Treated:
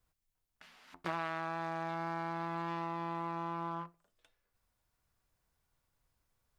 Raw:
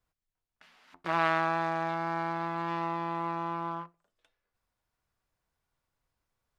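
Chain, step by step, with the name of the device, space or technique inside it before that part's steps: ASMR close-microphone chain (bass shelf 180 Hz +5 dB; compression 6:1, threshold -34 dBFS, peak gain reduction 12.5 dB; treble shelf 6.1 kHz +6 dB)

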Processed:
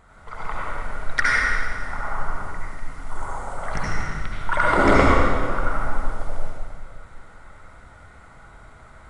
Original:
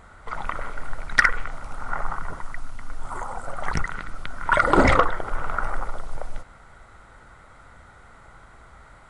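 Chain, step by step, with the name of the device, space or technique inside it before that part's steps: stairwell (reverberation RT60 1.9 s, pre-delay 65 ms, DRR -6 dB); trim -5.5 dB

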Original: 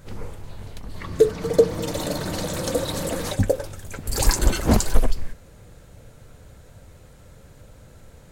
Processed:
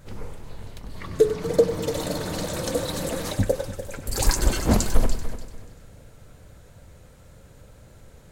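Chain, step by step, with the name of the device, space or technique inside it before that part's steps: multi-head tape echo (multi-head delay 97 ms, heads first and third, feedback 41%, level -13 dB; wow and flutter 24 cents); trim -2 dB

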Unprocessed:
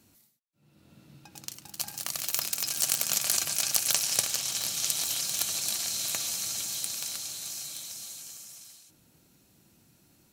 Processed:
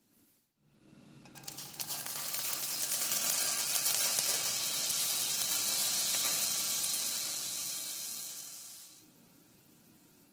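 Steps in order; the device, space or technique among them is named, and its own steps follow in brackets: far-field microphone of a smart speaker (reverberation RT60 0.75 s, pre-delay 96 ms, DRR -4 dB; high-pass 120 Hz 24 dB/octave; level rider gain up to 4 dB; trim -8 dB; Opus 16 kbps 48 kHz)

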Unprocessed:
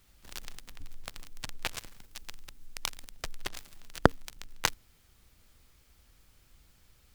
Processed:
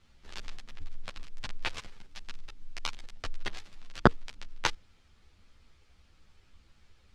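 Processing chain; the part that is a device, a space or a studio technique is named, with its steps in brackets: string-machine ensemble chorus (three-phase chorus; low-pass 4.8 kHz 12 dB/octave); trim +4 dB

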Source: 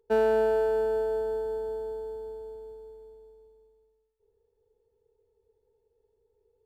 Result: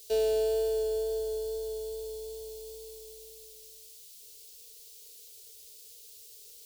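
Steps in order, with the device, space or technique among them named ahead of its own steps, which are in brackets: noise-reduction cassette on a plain deck (tape noise reduction on one side only encoder only; wow and flutter 10 cents; white noise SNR 30 dB); FFT filter 100 Hz 0 dB, 200 Hz -25 dB, 380 Hz -4 dB, 590 Hz -1 dB, 1.1 kHz -27 dB, 2.9 kHz +4 dB, 4.3 kHz +11 dB

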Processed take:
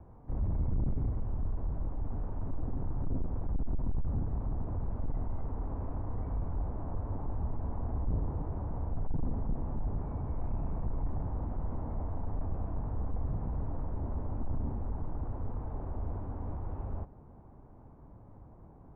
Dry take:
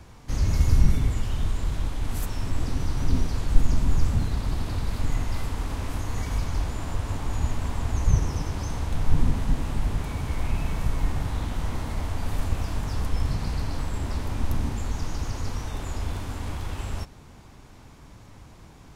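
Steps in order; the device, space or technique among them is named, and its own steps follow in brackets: overdriven synthesiser ladder filter (saturation -20.5 dBFS, distortion -8 dB; four-pole ladder low-pass 1.1 kHz, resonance 20%)

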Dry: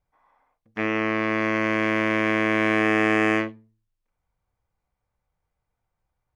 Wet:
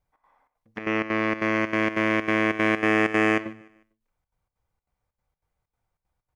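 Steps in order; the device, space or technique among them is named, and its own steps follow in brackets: trance gate with a delay (trance gate "xx.xxx.xxx." 191 bpm -12 dB; feedback delay 150 ms, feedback 38%, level -23 dB)

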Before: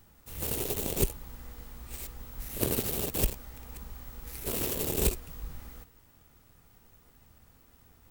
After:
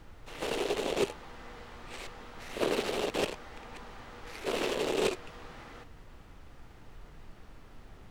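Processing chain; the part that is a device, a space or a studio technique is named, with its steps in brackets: aircraft cabin announcement (band-pass 380–3400 Hz; saturation -27 dBFS, distortion -17 dB; brown noise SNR 12 dB); trim +8 dB

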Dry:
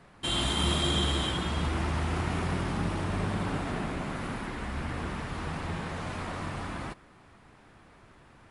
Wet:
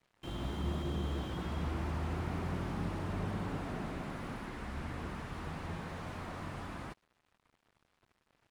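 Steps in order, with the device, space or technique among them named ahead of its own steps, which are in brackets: early transistor amplifier (crossover distortion -52 dBFS; slew-rate limiter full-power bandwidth 18 Hz); trim -5.5 dB

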